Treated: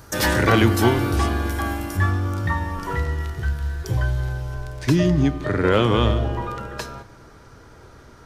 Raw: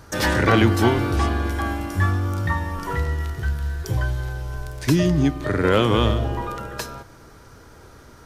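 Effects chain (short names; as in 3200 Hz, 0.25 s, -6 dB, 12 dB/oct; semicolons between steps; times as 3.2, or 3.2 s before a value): high shelf 9000 Hz +9.5 dB, from 1.97 s -4 dB, from 4.54 s -10.5 dB; reverb RT60 1.6 s, pre-delay 4 ms, DRR 17 dB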